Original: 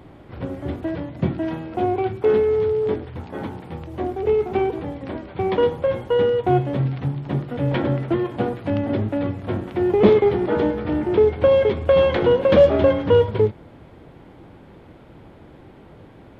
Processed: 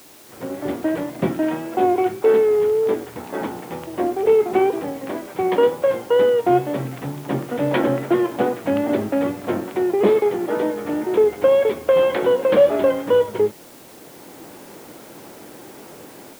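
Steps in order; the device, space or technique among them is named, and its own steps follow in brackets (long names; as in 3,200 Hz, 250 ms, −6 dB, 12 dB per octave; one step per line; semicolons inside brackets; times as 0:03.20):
dictaphone (band-pass filter 260–3,500 Hz; automatic gain control; tape wow and flutter; white noise bed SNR 27 dB)
level −4.5 dB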